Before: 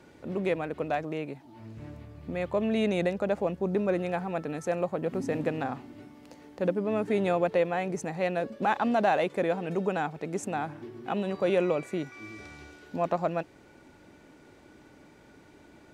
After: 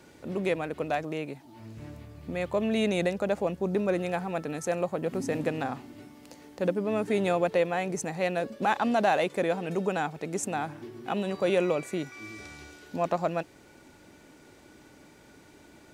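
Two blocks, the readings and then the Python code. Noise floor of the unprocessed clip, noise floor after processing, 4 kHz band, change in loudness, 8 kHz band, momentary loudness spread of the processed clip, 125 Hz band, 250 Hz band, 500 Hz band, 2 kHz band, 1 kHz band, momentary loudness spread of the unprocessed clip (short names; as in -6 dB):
-56 dBFS, -55 dBFS, +3.5 dB, +0.5 dB, +7.0 dB, 18 LU, 0.0 dB, 0.0 dB, 0.0 dB, +1.5 dB, +0.5 dB, 18 LU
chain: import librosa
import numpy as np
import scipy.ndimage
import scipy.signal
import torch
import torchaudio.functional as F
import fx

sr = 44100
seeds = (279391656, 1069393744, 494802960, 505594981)

y = fx.high_shelf(x, sr, hz=4300.0, db=9.5)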